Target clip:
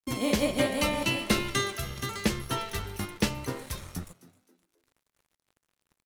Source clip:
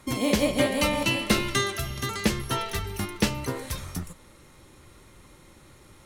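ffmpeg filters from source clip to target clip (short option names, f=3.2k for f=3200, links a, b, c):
-filter_complex "[0:a]aeval=exprs='sgn(val(0))*max(abs(val(0))-0.00562,0)':c=same,asplit=4[a][b][c][d];[b]adelay=262,afreqshift=84,volume=-19.5dB[e];[c]adelay=524,afreqshift=168,volume=-28.9dB[f];[d]adelay=786,afreqshift=252,volume=-38.2dB[g];[a][e][f][g]amix=inputs=4:normalize=0,volume=-2.5dB"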